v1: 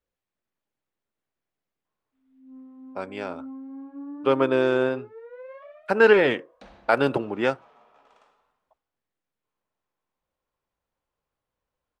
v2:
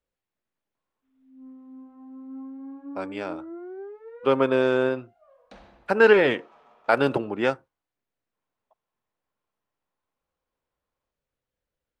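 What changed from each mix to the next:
background: entry -1.10 s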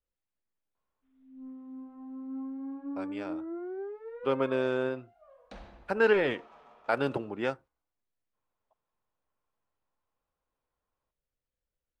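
speech -8.0 dB; master: add bass shelf 61 Hz +11.5 dB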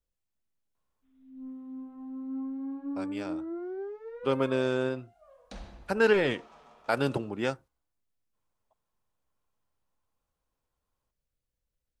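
master: add tone controls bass +6 dB, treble +12 dB

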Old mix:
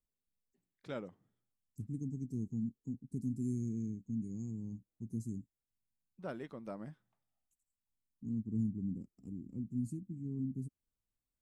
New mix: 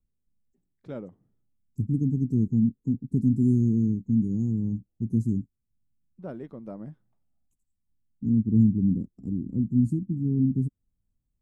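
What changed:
second voice +8.0 dB; master: add tilt shelf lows +8 dB

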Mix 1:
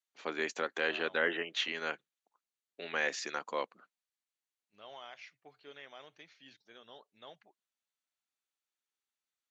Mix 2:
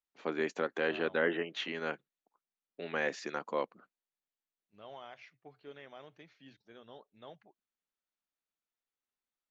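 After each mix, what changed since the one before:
master: add tilt EQ -3 dB/octave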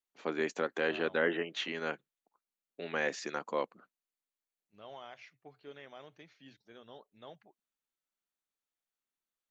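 master: remove distance through air 65 m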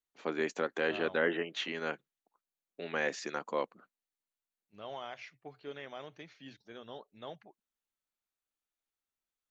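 second voice +5.5 dB

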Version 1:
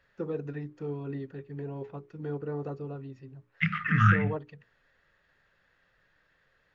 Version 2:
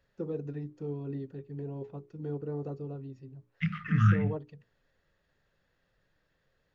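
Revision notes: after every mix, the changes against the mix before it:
master: add peaking EQ 1.7 kHz -10.5 dB 2.1 oct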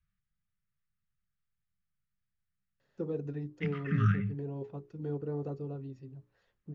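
first voice: entry +2.80 s; second voice -4.0 dB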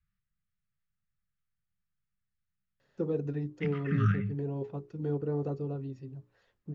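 first voice +4.0 dB

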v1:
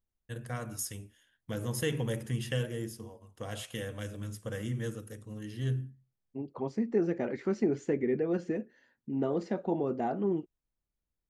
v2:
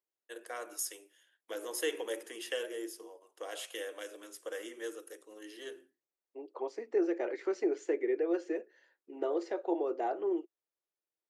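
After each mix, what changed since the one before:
master: add Chebyshev high-pass 330 Hz, order 5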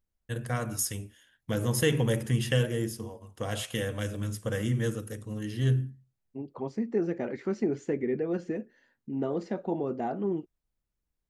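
first voice +6.5 dB; master: remove Chebyshev high-pass 330 Hz, order 5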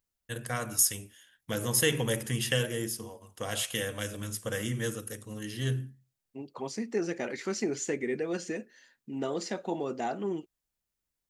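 second voice: remove low-pass 1.4 kHz 6 dB/octave; master: add tilt EQ +2 dB/octave

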